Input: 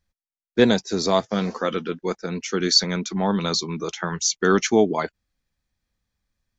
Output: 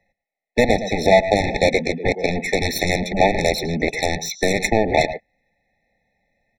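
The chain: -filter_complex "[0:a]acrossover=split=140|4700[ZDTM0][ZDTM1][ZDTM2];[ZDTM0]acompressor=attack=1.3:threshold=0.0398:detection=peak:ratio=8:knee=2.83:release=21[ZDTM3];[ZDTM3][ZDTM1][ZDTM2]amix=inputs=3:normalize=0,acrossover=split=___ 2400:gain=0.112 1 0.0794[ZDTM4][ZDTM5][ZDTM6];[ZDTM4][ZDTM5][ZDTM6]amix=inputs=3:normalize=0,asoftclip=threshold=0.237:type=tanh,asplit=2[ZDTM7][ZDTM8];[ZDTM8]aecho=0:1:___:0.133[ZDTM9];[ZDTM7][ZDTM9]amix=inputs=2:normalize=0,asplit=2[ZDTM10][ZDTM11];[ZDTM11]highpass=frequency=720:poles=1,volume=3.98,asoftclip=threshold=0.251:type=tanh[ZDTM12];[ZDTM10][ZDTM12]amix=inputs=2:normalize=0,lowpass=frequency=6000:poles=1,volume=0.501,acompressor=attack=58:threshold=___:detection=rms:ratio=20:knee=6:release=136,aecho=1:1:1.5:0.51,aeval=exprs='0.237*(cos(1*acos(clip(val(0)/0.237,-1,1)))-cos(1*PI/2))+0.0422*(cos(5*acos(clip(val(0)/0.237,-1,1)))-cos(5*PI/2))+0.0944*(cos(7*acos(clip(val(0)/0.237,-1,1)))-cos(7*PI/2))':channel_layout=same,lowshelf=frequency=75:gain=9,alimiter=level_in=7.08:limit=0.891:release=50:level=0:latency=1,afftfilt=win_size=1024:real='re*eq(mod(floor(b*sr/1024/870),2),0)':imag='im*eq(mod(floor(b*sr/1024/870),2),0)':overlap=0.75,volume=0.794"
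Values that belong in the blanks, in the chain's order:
160, 110, 0.0631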